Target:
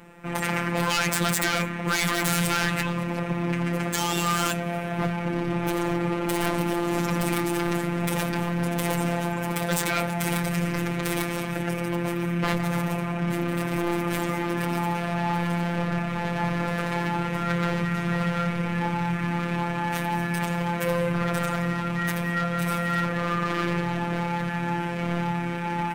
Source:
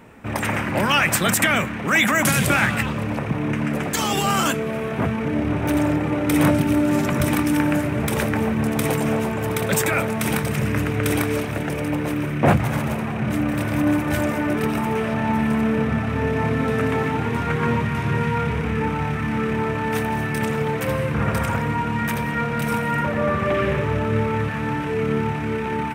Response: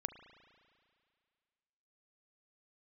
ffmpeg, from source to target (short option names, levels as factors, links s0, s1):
-af "acontrast=74,aeval=exprs='0.299*(abs(mod(val(0)/0.299+3,4)-2)-1)':c=same,afftfilt=real='hypot(re,im)*cos(PI*b)':imag='0':win_size=1024:overlap=0.75,volume=0.531"